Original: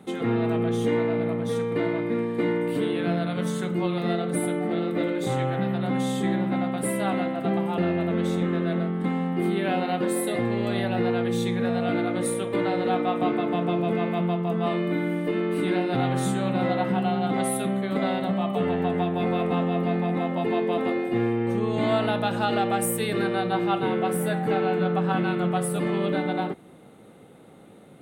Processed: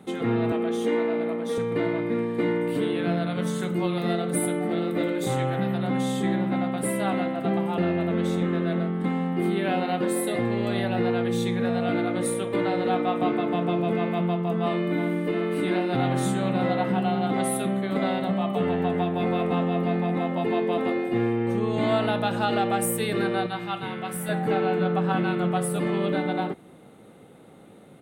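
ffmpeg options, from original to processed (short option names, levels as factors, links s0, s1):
-filter_complex "[0:a]asettb=1/sr,asplit=3[s0][s1][s2];[s0]atrim=end=0.524[s3];[s1]atrim=start=0.52:end=1.58,asetpts=PTS-STARTPTS,afade=t=in:d=0.004:c=qsin,afade=t=out:st=1.056:d=0.004:c=qsin,highpass=f=220:w=0.5412,highpass=f=220:w=1.3066[s4];[s2]atrim=start=1.576[s5];[s3][s4]acrossfade=d=0.004:c1=hsin:c2=qsin[s6];[s6][s5]acrossfade=d=0.004:c1=qsin:c2=hsin,asettb=1/sr,asplit=3[s7][s8][s9];[s7]atrim=end=3.604[s10];[s8]atrim=start=3.6:end=5.83,asetpts=PTS-STARTPTS,afade=t=in:d=0.004:c=qsin,afade=t=out:st=2.226:d=0.004:c=qsin,highshelf=f=8500:g=9[s11];[s9]atrim=start=5.826[s12];[s10][s11]acrossfade=d=0.004:c1=hsin:c2=qsin[s13];[s13][s12]acrossfade=d=0.004:c1=qsin:c2=hsin,asplit=2[s14][s15];[s15]afade=t=in:st=14.61:d=0.01,afade=t=out:st=15.21:d=0.01,aecho=0:1:360|720|1080|1440|1800|2160|2520|2880|3240|3600|3960|4320:0.251189|0.21351|0.181484|0.154261|0.131122|0.111454|0.0947357|0.0805253|0.0684465|0.0581795|0.0494526|0.0420347[s16];[s14][s16]amix=inputs=2:normalize=0,asettb=1/sr,asplit=3[s17][s18][s19];[s17]atrim=end=23.464[s20];[s18]atrim=start=23.46:end=24.29,asetpts=PTS-STARTPTS,afade=t=in:d=0.004:c=qsin,afade=t=out:st=0.826:d=0.004:c=qsin,equalizer=f=400:w=0.65:g=-12[s21];[s19]atrim=start=24.286[s22];[s20][s21]acrossfade=d=0.004:c1=hsin:c2=qsin[s23];[s23][s22]acrossfade=d=0.004:c1=qsin:c2=hsin"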